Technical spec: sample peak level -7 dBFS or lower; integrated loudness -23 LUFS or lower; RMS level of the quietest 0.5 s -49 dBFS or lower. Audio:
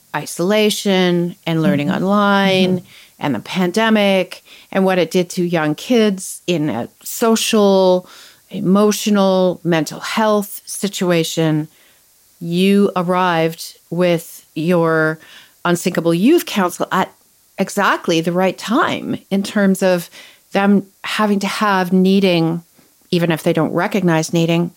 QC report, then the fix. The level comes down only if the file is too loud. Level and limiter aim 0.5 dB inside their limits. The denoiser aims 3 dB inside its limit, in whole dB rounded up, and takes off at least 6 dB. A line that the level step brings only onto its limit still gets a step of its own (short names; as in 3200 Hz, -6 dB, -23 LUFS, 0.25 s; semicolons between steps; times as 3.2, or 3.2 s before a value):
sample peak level -4.5 dBFS: fail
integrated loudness -16.5 LUFS: fail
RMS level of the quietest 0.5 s -52 dBFS: OK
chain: gain -7 dB